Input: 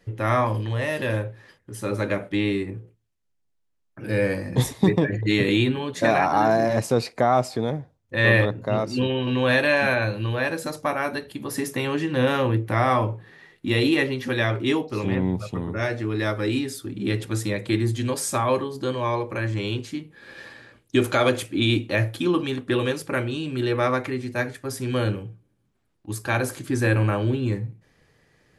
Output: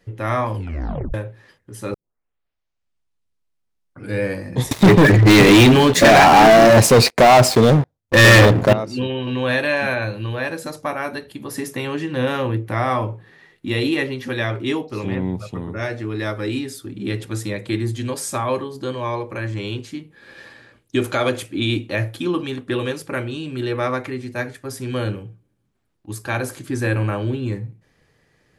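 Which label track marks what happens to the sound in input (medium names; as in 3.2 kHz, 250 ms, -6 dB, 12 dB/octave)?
0.550000	0.550000	tape stop 0.59 s
1.940000	1.940000	tape start 2.25 s
4.710000	8.730000	waveshaping leveller passes 5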